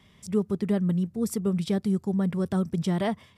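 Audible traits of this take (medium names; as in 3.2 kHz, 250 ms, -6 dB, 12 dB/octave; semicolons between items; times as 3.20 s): noise floor -58 dBFS; spectral tilt -8.0 dB/octave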